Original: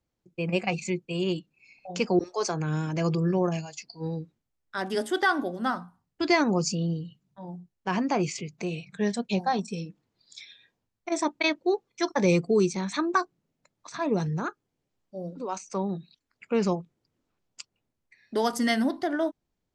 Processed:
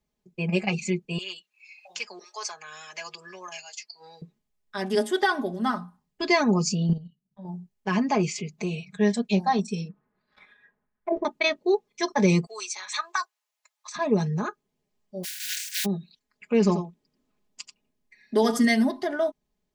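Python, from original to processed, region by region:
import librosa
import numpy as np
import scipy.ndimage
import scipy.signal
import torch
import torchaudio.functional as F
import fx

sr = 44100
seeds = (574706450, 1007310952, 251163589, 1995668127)

y = fx.chain(x, sr, fx.highpass(hz=1400.0, slope=12),
    fx.band_squash(depth_pct=40), at=(1.18, 4.22))
y = fx.chain(y, sr, fx.low_shelf(hz=350.0, db=7.5),
    fx.transient(attack_db=-4, sustain_db=-11),
    fx.level_steps(step_db=11), at=(6.89, 7.45))
y = fx.chain(y, sr, fx.dead_time(dead_ms=0.077),
    fx.envelope_lowpass(base_hz=450.0, top_hz=1600.0, q=3.0, full_db=-28.5, direction='down'), at=(9.88, 11.25))
y = fx.chain(y, sr, fx.highpass(hz=870.0, slope=24),
    fx.high_shelf(hz=4700.0, db=5.0), at=(12.46, 13.96))
y = fx.spec_flatten(y, sr, power=0.17, at=(15.23, 15.84), fade=0.02)
y = fx.brickwall_highpass(y, sr, low_hz=1400.0, at=(15.23, 15.84), fade=0.02)
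y = fx.sustainer(y, sr, db_per_s=47.0, at=(15.23, 15.84), fade=0.02)
y = fx.chain(y, sr, fx.peak_eq(hz=290.0, db=7.0, octaves=0.38),
    fx.echo_single(ms=87, db=-9.5), at=(16.6, 18.65))
y = fx.notch(y, sr, hz=1400.0, q=8.7)
y = y + 0.78 * np.pad(y, (int(4.8 * sr / 1000.0), 0))[:len(y)]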